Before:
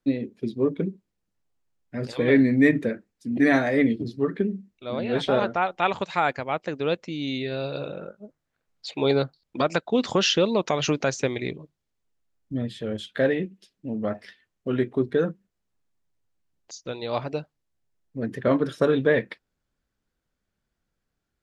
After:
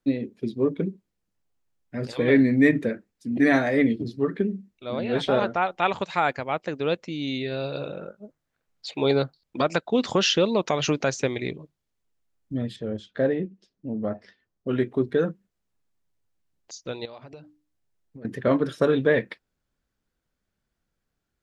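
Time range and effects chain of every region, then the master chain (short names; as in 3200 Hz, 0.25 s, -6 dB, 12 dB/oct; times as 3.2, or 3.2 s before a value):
12.76–14.69 LPF 6200 Hz 24 dB/oct + bell 2800 Hz -10.5 dB 1.9 oct
17.05–18.25 notches 60/120/180/240/300 Hz + compressor 10:1, threshold -39 dBFS
whole clip: dry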